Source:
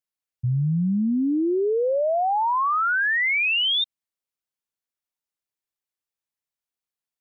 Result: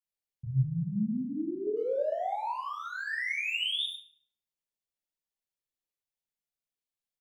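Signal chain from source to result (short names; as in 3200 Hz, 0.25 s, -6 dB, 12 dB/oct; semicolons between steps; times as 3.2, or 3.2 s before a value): 0.57–1.67 resonator 210 Hz, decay 1.1 s, mix 60%; dynamic EQ 460 Hz, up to -5 dB, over -37 dBFS, Q 3; speakerphone echo 0.1 s, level -8 dB; limiter -22.5 dBFS, peak gain reduction 5 dB; bell 1300 Hz -10 dB 0.64 oct; shoebox room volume 130 m³, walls mixed, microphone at 1.2 m; gain -8.5 dB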